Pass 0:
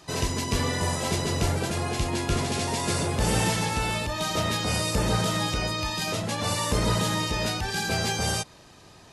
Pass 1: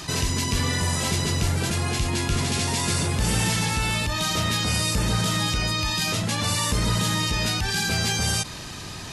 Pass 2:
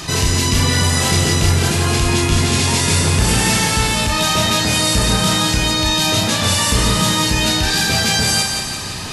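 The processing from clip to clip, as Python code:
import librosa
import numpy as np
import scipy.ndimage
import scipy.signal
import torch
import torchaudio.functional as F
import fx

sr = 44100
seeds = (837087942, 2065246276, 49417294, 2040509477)

y1 = fx.peak_eq(x, sr, hz=570.0, db=-8.5, octaves=1.9)
y1 = fx.env_flatten(y1, sr, amount_pct=50)
y1 = y1 * librosa.db_to_amplitude(1.5)
y2 = fx.doubler(y1, sr, ms=32.0, db=-5.0)
y2 = fx.echo_thinned(y2, sr, ms=173, feedback_pct=57, hz=230.0, wet_db=-5.5)
y2 = y2 * librosa.db_to_amplitude(6.5)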